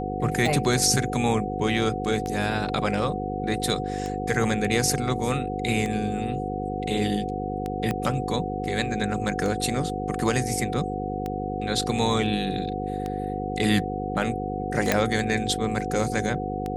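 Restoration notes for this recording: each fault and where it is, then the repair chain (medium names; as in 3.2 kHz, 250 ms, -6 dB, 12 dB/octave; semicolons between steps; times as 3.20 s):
buzz 50 Hz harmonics 10 -31 dBFS
tick 33 1/3 rpm
whine 740 Hz -31 dBFS
7.91 s: pop -13 dBFS
14.92 s: pop -4 dBFS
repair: de-click; band-stop 740 Hz, Q 30; de-hum 50 Hz, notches 10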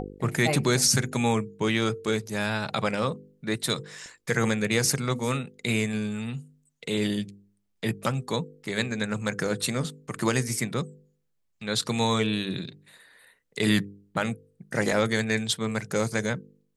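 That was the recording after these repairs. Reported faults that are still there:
7.91 s: pop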